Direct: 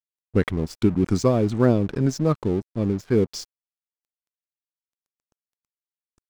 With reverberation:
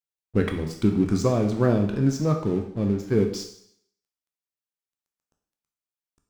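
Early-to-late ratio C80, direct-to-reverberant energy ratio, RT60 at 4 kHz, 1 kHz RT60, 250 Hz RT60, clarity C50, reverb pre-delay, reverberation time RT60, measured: 10.5 dB, 3.0 dB, 0.65 s, 0.70 s, 0.55 s, 7.5 dB, 11 ms, 0.65 s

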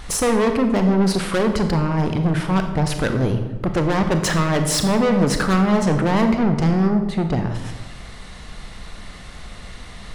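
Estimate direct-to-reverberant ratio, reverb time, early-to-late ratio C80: 6.0 dB, 1.2 s, 9.5 dB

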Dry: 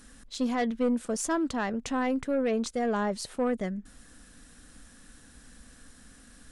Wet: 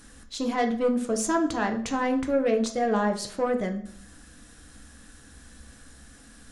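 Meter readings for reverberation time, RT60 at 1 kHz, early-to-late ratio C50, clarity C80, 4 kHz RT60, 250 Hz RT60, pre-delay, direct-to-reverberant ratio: 0.55 s, 0.55 s, 11.0 dB, 15.0 dB, 0.50 s, 0.70 s, 3 ms, 4.0 dB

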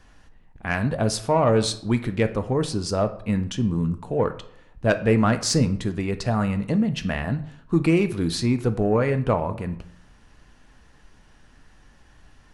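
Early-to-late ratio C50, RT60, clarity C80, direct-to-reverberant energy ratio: 14.0 dB, 0.70 s, 17.5 dB, 8.5 dB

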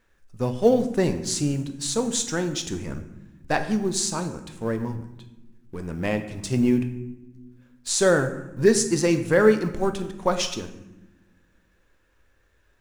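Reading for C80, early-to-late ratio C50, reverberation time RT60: 13.0 dB, 10.5 dB, 1.0 s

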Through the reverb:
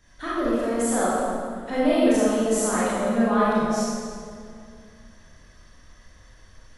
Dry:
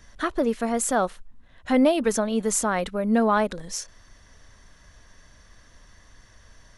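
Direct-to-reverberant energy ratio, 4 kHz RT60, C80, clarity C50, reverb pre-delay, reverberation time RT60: −9.5 dB, 1.6 s, −2.0 dB, −5.0 dB, 25 ms, 2.3 s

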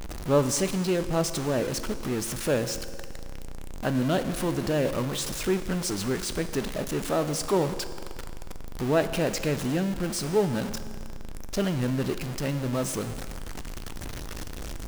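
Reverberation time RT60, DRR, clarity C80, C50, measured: 2.0 s, 10.0 dB, 12.5 dB, 11.5 dB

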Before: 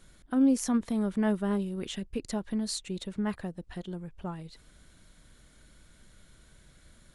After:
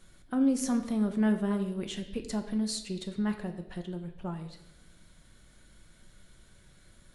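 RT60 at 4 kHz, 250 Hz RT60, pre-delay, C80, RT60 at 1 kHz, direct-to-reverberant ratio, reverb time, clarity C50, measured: 0.95 s, 1.0 s, 5 ms, 12.5 dB, 0.80 s, 6.0 dB, 0.95 s, 10.5 dB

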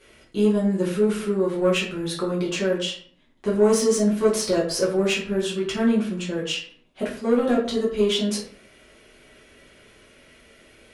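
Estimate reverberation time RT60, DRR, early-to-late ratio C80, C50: 0.55 s, −6.5 dB, 10.0 dB, 6.5 dB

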